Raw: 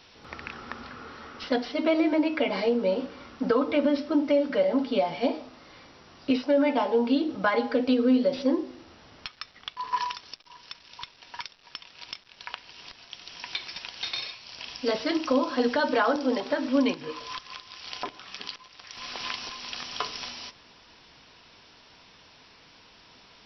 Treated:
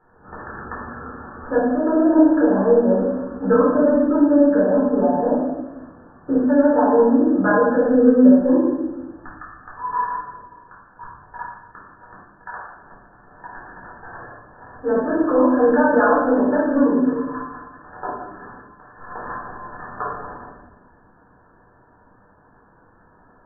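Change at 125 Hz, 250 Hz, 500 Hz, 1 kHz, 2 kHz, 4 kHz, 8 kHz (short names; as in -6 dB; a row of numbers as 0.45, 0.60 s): +12.5 dB, +10.0 dB, +8.5 dB, +8.0 dB, +5.0 dB, under -40 dB, n/a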